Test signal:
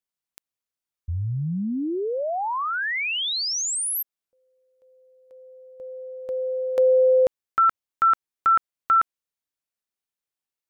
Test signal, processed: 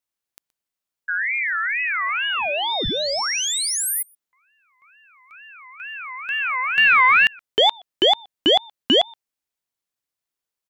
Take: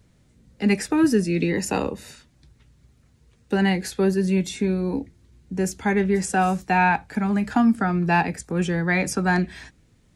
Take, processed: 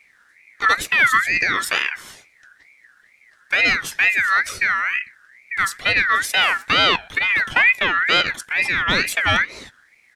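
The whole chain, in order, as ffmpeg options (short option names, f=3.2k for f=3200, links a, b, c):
-filter_complex "[0:a]asplit=2[a][b];[b]adelay=122.4,volume=-28dB,highshelf=f=4k:g=-2.76[c];[a][c]amix=inputs=2:normalize=0,acontrast=50,aeval=exprs='0.596*(cos(1*acos(clip(val(0)/0.596,-1,1)))-cos(1*PI/2))+0.0168*(cos(6*acos(clip(val(0)/0.596,-1,1)))-cos(6*PI/2))':c=same,aeval=exprs='val(0)*sin(2*PI*1900*n/s+1900*0.2/2.2*sin(2*PI*2.2*n/s))':c=same"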